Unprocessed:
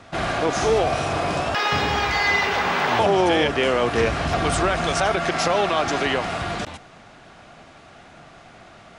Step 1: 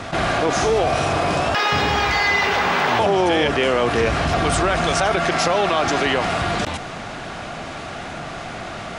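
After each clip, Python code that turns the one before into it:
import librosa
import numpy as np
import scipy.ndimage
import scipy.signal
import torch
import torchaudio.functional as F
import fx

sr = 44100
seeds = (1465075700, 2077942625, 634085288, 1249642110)

y = fx.env_flatten(x, sr, amount_pct=50)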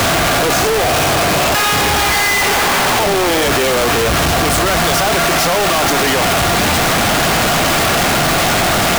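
y = np.sign(x) * np.sqrt(np.mean(np.square(x)))
y = y * librosa.db_to_amplitude(6.5)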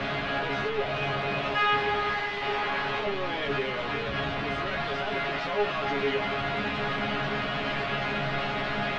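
y = scipy.signal.sosfilt(scipy.signal.butter(4, 3400.0, 'lowpass', fs=sr, output='sos'), x)
y = fx.peak_eq(y, sr, hz=830.0, db=-2.5, octaves=0.77)
y = fx.resonator_bank(y, sr, root=49, chord='fifth', decay_s=0.2)
y = y * librosa.db_to_amplitude(-3.0)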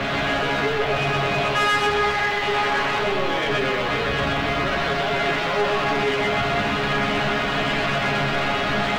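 y = fx.leveller(x, sr, passes=2)
y = y + 10.0 ** (-3.0 / 20.0) * np.pad(y, (int(126 * sr / 1000.0), 0))[:len(y)]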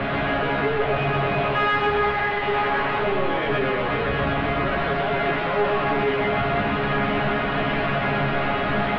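y = fx.air_absorb(x, sr, metres=400.0)
y = y * librosa.db_to_amplitude(1.5)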